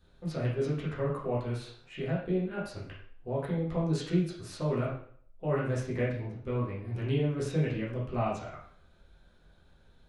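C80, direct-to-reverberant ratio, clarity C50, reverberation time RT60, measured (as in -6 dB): 7.5 dB, -7.5 dB, 3.0 dB, 0.60 s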